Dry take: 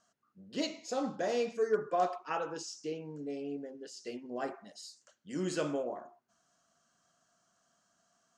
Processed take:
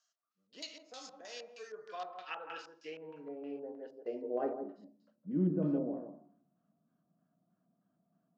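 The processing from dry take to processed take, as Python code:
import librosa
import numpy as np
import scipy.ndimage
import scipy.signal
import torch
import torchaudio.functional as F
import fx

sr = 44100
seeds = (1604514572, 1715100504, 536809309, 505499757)

y = x + 10.0 ** (-7.0 / 20.0) * np.pad(x, (int(161 * sr / 1000.0), 0))[:len(x)]
y = fx.room_shoebox(y, sr, seeds[0], volume_m3=900.0, walls='furnished', distance_m=0.48)
y = fx.filter_lfo_lowpass(y, sr, shape='square', hz=3.2, low_hz=870.0, high_hz=3600.0, q=0.81)
y = fx.hpss(y, sr, part='harmonic', gain_db=4)
y = fx.filter_sweep_bandpass(y, sr, from_hz=6200.0, to_hz=210.0, start_s=1.64, end_s=5.23, q=1.8)
y = fx.band_squash(y, sr, depth_pct=70, at=(0.52, 1.21))
y = y * 10.0 ** (4.5 / 20.0)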